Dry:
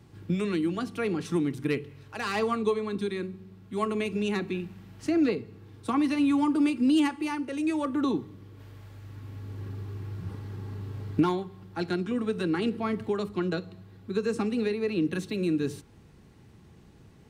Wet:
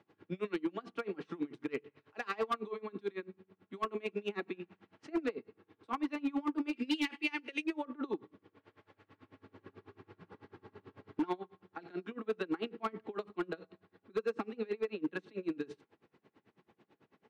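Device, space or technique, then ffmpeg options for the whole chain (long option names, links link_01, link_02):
helicopter radio: -filter_complex "[0:a]highpass=340,lowpass=2700,aeval=exprs='val(0)*pow(10,-27*(0.5-0.5*cos(2*PI*9.1*n/s))/20)':channel_layout=same,asoftclip=type=hard:threshold=-27dB,asettb=1/sr,asplit=3[link_01][link_02][link_03];[link_01]atrim=end=6.734[link_04];[link_02]atrim=start=6.73:end=7.64,asetpts=PTS-STARTPTS,afade=type=in:duration=0.004:curve=qsin,afade=type=out:start_time=0.906:duration=0.004:curve=qsin,highshelf=frequency=1700:width_type=q:width=1.5:gain=11[link_05];[link_03]atrim=start=7.636[link_06];[link_04][link_05]acrossfade=duration=0.004:curve1=hsin:curve2=qsin[link_07];[link_07][link_06]acrossfade=duration=0.004:curve1=qsin:curve2=hsin"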